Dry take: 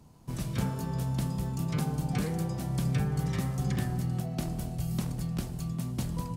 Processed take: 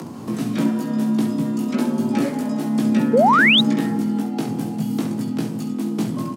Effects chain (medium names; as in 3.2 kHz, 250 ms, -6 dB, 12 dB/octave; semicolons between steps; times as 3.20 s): frequency shift +88 Hz; upward compressor, threshold -31 dBFS; treble shelf 4.4 kHz -7 dB; early reflections 18 ms -4 dB, 67 ms -8.5 dB; painted sound rise, 3.13–3.61 s, 430–4000 Hz -22 dBFS; trim +8 dB